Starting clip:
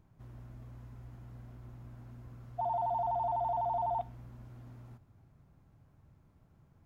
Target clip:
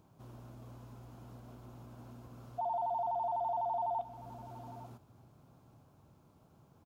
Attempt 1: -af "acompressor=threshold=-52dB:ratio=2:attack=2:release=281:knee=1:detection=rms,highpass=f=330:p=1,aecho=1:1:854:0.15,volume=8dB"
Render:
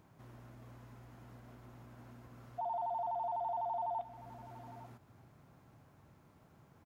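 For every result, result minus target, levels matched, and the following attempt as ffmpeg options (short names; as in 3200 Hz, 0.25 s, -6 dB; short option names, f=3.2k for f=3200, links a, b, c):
2000 Hz band +6.5 dB; compressor: peak gain reduction +3.5 dB
-af "acompressor=threshold=-52dB:ratio=2:attack=2:release=281:knee=1:detection=rms,highpass=f=330:p=1,equalizer=f=1.9k:w=2.2:g=-12,aecho=1:1:854:0.15,volume=8dB"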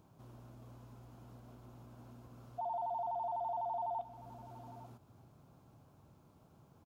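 compressor: peak gain reduction +3.5 dB
-af "acompressor=threshold=-45dB:ratio=2:attack=2:release=281:knee=1:detection=rms,highpass=f=330:p=1,equalizer=f=1.9k:w=2.2:g=-12,aecho=1:1:854:0.15,volume=8dB"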